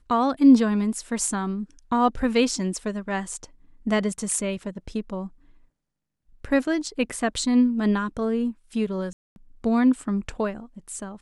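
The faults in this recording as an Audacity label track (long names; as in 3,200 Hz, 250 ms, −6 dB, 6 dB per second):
9.130000	9.360000	drop-out 231 ms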